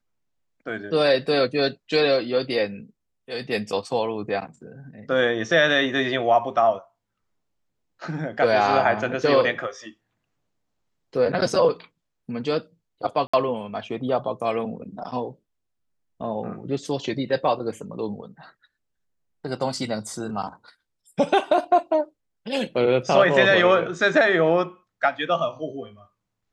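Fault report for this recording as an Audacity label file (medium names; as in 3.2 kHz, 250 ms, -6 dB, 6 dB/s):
13.270000	13.340000	dropout 65 ms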